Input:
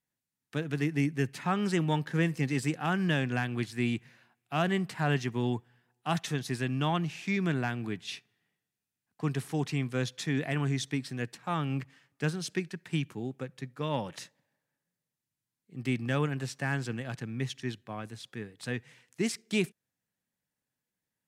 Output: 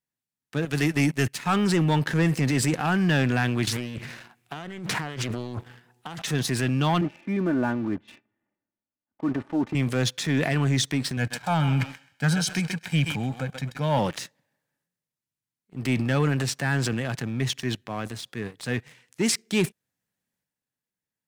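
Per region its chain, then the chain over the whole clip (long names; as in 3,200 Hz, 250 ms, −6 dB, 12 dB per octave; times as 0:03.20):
0:00.65–0:01.56: noise gate −35 dBFS, range −11 dB + high-shelf EQ 2,100 Hz +10 dB
0:03.67–0:06.22: compressor whose output falls as the input rises −41 dBFS + highs frequency-modulated by the lows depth 1 ms
0:07.01–0:09.75: low-pass filter 1,000 Hz + low-shelf EQ 140 Hz −6 dB + comb filter 3.4 ms, depth 74%
0:11.17–0:13.99: comb filter 1.3 ms, depth 77% + feedback echo with a high-pass in the loop 131 ms, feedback 30%, high-pass 570 Hz, level −10 dB
whole clip: leveller curve on the samples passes 2; transient designer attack −2 dB, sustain +7 dB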